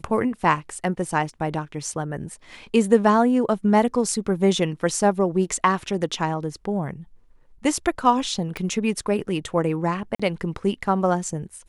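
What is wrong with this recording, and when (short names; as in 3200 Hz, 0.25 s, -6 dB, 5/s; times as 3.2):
8.57 pop -16 dBFS
10.15–10.2 gap 45 ms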